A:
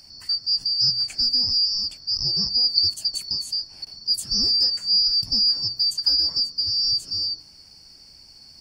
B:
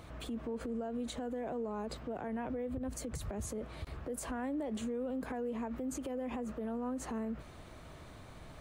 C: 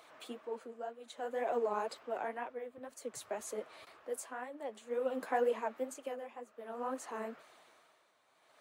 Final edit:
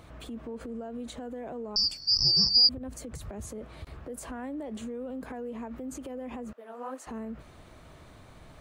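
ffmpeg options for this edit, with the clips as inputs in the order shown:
ffmpeg -i take0.wav -i take1.wav -i take2.wav -filter_complex "[1:a]asplit=3[link_01][link_02][link_03];[link_01]atrim=end=1.762[link_04];[0:a]atrim=start=1.758:end=2.692[link_05];[link_02]atrim=start=2.688:end=6.532[link_06];[2:a]atrim=start=6.528:end=7.072[link_07];[link_03]atrim=start=7.068[link_08];[link_04][link_05]acrossfade=duration=0.004:curve1=hsin:curve2=hsin[link_09];[link_09][link_06]acrossfade=duration=0.004:curve1=hsin:curve2=hsin[link_10];[link_10][link_07]acrossfade=duration=0.004:curve1=hsin:curve2=hsin[link_11];[link_11][link_08]acrossfade=duration=0.004:curve1=hsin:curve2=hsin" out.wav

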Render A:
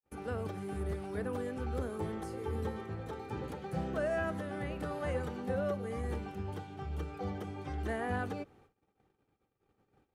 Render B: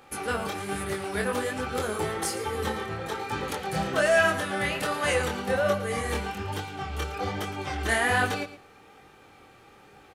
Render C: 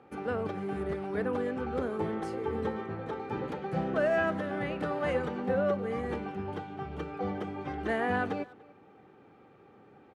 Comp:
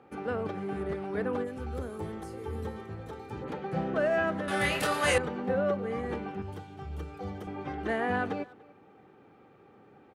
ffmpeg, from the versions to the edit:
ffmpeg -i take0.wav -i take1.wav -i take2.wav -filter_complex "[0:a]asplit=2[link_01][link_02];[2:a]asplit=4[link_03][link_04][link_05][link_06];[link_03]atrim=end=1.48[link_07];[link_01]atrim=start=1.42:end=3.48[link_08];[link_04]atrim=start=3.42:end=4.482[link_09];[1:a]atrim=start=4.478:end=5.182[link_10];[link_05]atrim=start=5.178:end=6.422[link_11];[link_02]atrim=start=6.418:end=7.472[link_12];[link_06]atrim=start=7.468[link_13];[link_07][link_08]acrossfade=duration=0.06:curve1=tri:curve2=tri[link_14];[link_14][link_09]acrossfade=duration=0.06:curve1=tri:curve2=tri[link_15];[link_15][link_10]acrossfade=duration=0.004:curve1=hsin:curve2=hsin[link_16];[link_16][link_11]acrossfade=duration=0.004:curve1=hsin:curve2=hsin[link_17];[link_17][link_12]acrossfade=duration=0.004:curve1=hsin:curve2=hsin[link_18];[link_18][link_13]acrossfade=duration=0.004:curve1=hsin:curve2=hsin" out.wav

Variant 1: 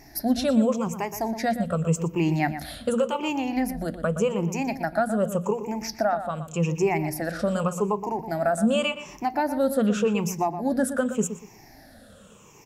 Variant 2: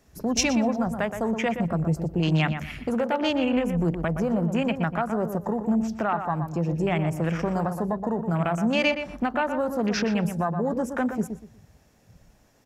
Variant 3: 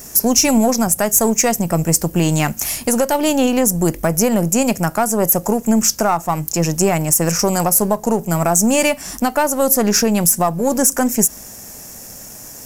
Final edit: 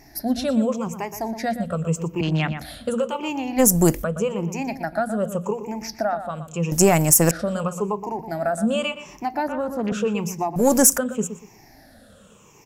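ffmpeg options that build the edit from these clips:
ffmpeg -i take0.wav -i take1.wav -i take2.wav -filter_complex "[1:a]asplit=2[link_01][link_02];[2:a]asplit=3[link_03][link_04][link_05];[0:a]asplit=6[link_06][link_07][link_08][link_09][link_10][link_11];[link_06]atrim=end=2.212[link_12];[link_01]atrim=start=2.208:end=2.612[link_13];[link_07]atrim=start=2.608:end=3.6[link_14];[link_03]atrim=start=3.58:end=4.04[link_15];[link_08]atrim=start=4.02:end=6.722[link_16];[link_04]atrim=start=6.718:end=7.312[link_17];[link_09]atrim=start=7.308:end=9.482[link_18];[link_02]atrim=start=9.478:end=9.922[link_19];[link_10]atrim=start=9.918:end=10.562[link_20];[link_05]atrim=start=10.558:end=10.982[link_21];[link_11]atrim=start=10.978[link_22];[link_12][link_13]acrossfade=duration=0.004:curve1=hsin:curve2=hsin[link_23];[link_23][link_14]acrossfade=duration=0.004:curve1=hsin:curve2=hsin[link_24];[link_24][link_15]acrossfade=duration=0.02:curve1=tri:curve2=tri[link_25];[link_25][link_16]acrossfade=duration=0.02:curve1=tri:curve2=tri[link_26];[link_26][link_17]acrossfade=duration=0.004:curve1=hsin:curve2=hsin[link_27];[link_27][link_18]acrossfade=duration=0.004:curve1=hsin:curve2=hsin[link_28];[link_28][link_19]acrossfade=duration=0.004:curve1=hsin:curve2=hsin[link_29];[link_29][link_20]acrossfade=duration=0.004:curve1=hsin:curve2=hsin[link_30];[link_30][link_21]acrossfade=duration=0.004:curve1=hsin:curve2=hsin[link_31];[link_31][link_22]acrossfade=duration=0.004:curve1=hsin:curve2=hsin" out.wav

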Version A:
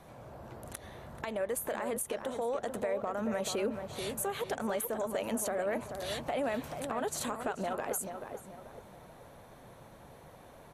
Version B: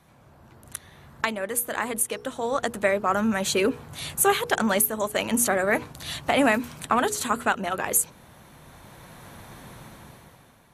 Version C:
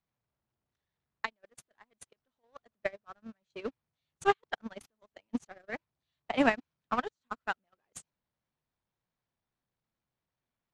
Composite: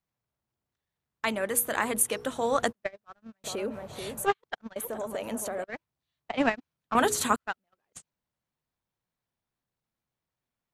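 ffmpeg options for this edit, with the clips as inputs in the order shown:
ffmpeg -i take0.wav -i take1.wav -i take2.wav -filter_complex "[1:a]asplit=2[link_01][link_02];[0:a]asplit=2[link_03][link_04];[2:a]asplit=5[link_05][link_06][link_07][link_08][link_09];[link_05]atrim=end=1.27[link_10];[link_01]atrim=start=1.23:end=2.73[link_11];[link_06]atrim=start=2.69:end=3.442[link_12];[link_03]atrim=start=3.438:end=4.262[link_13];[link_07]atrim=start=4.258:end=4.762[link_14];[link_04]atrim=start=4.758:end=5.642[link_15];[link_08]atrim=start=5.638:end=6.952[link_16];[link_02]atrim=start=6.948:end=7.362[link_17];[link_09]atrim=start=7.358[link_18];[link_10][link_11]acrossfade=duration=0.04:curve1=tri:curve2=tri[link_19];[link_19][link_12]acrossfade=duration=0.04:curve1=tri:curve2=tri[link_20];[link_20][link_13]acrossfade=duration=0.004:curve1=hsin:curve2=hsin[link_21];[link_21][link_14]acrossfade=duration=0.004:curve1=hsin:curve2=hsin[link_22];[link_22][link_15]acrossfade=duration=0.004:curve1=hsin:curve2=hsin[link_23];[link_23][link_16]acrossfade=duration=0.004:curve1=hsin:curve2=hsin[link_24];[link_24][link_17]acrossfade=duration=0.004:curve1=hsin:curve2=hsin[link_25];[link_25][link_18]acrossfade=duration=0.004:curve1=hsin:curve2=hsin" out.wav

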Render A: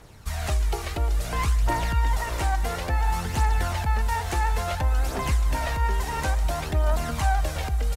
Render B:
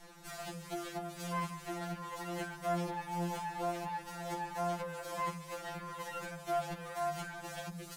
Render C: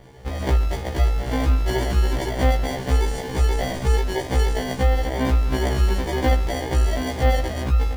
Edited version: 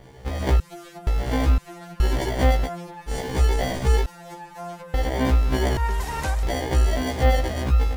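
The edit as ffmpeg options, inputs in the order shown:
ffmpeg -i take0.wav -i take1.wav -i take2.wav -filter_complex "[1:a]asplit=4[link_01][link_02][link_03][link_04];[2:a]asplit=6[link_05][link_06][link_07][link_08][link_09][link_10];[link_05]atrim=end=0.602[link_11];[link_01]atrim=start=0.598:end=1.072[link_12];[link_06]atrim=start=1.068:end=1.582[link_13];[link_02]atrim=start=1.578:end=2.002[link_14];[link_07]atrim=start=1.998:end=2.7[link_15];[link_03]atrim=start=2.64:end=3.12[link_16];[link_08]atrim=start=3.06:end=4.062[link_17];[link_04]atrim=start=4.058:end=4.942[link_18];[link_09]atrim=start=4.938:end=5.772[link_19];[0:a]atrim=start=5.768:end=6.432[link_20];[link_10]atrim=start=6.428[link_21];[link_11][link_12]acrossfade=duration=0.004:curve1=hsin:curve2=hsin[link_22];[link_22][link_13]acrossfade=duration=0.004:curve1=hsin:curve2=hsin[link_23];[link_23][link_14]acrossfade=duration=0.004:curve1=hsin:curve2=hsin[link_24];[link_24][link_15]acrossfade=duration=0.004:curve1=hsin:curve2=hsin[link_25];[link_25][link_16]acrossfade=duration=0.06:curve1=tri:curve2=tri[link_26];[link_26][link_17]acrossfade=duration=0.06:curve1=tri:curve2=tri[link_27];[link_27][link_18]acrossfade=duration=0.004:curve1=hsin:curve2=hsin[link_28];[link_28][link_19]acrossfade=duration=0.004:curve1=hsin:curve2=hsin[link_29];[link_29][link_20]acrossfade=duration=0.004:curve1=hsin:curve2=hsin[link_30];[link_30][link_21]acrossfade=duration=0.004:curve1=hsin:curve2=hsin" out.wav

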